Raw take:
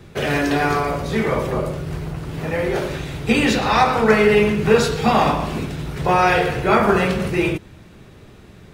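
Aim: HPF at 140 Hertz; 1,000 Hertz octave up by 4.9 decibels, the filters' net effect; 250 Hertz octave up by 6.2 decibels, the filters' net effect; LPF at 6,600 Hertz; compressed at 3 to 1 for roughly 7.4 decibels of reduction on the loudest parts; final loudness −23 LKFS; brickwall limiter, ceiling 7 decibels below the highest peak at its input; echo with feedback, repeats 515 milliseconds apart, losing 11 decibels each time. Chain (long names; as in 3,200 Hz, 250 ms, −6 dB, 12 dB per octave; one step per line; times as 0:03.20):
high-pass filter 140 Hz
low-pass filter 6,600 Hz
parametric band 250 Hz +8.5 dB
parametric band 1,000 Hz +6 dB
downward compressor 3 to 1, threshold −16 dBFS
brickwall limiter −12 dBFS
repeating echo 515 ms, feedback 28%, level −11 dB
level −1.5 dB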